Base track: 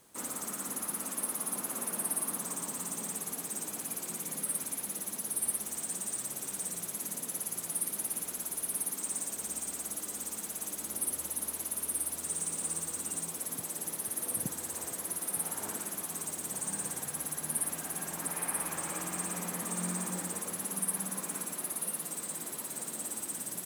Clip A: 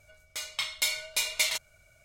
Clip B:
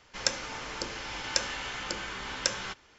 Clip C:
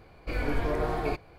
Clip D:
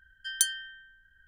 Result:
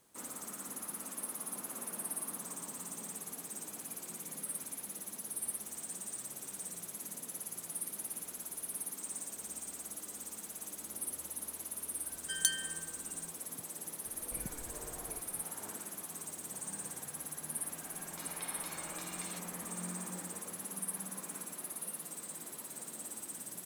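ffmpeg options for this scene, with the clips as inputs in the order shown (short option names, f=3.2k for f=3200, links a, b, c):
-filter_complex "[0:a]volume=-6.5dB[a];[3:a]acompressor=threshold=-39dB:ratio=6:attack=3.2:release=140:knee=1:detection=peak[b];[1:a]acompressor=threshold=-41dB:ratio=6:attack=3.2:release=140:knee=1:detection=peak[c];[4:a]atrim=end=1.27,asetpts=PTS-STARTPTS,volume=-4.5dB,afade=t=in:d=0.004:c=hsin,afade=t=out:st=1.266:d=0.004:c=hsin,adelay=12040[d];[b]atrim=end=1.38,asetpts=PTS-STARTPTS,volume=-7.5dB,afade=t=in:d=0.004:c=hsin,afade=t=out:st=1.376:d=0.004:c=hsin,adelay=14050[e];[c]atrim=end=2.04,asetpts=PTS-STARTPTS,volume=-7.5dB,afade=t=in:d=0.004:c=hsin,afade=t=out:st=2.036:d=0.004:c=hsin,adelay=17820[f];[a][d][e][f]amix=inputs=4:normalize=0"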